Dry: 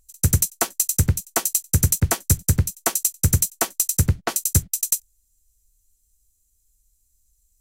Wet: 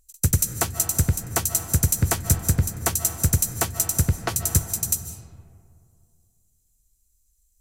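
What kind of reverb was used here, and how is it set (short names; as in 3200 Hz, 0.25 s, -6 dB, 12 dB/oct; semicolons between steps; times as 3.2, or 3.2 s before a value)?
digital reverb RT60 2.3 s, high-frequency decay 0.4×, pre-delay 0.11 s, DRR 8.5 dB; gain -2 dB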